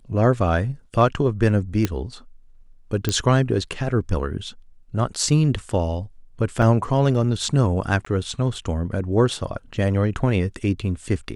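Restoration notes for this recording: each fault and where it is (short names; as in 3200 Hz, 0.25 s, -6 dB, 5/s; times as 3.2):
1.85 pop -7 dBFS
3.09 pop -7 dBFS
6.62 gap 4.8 ms
8.05–8.06 gap 14 ms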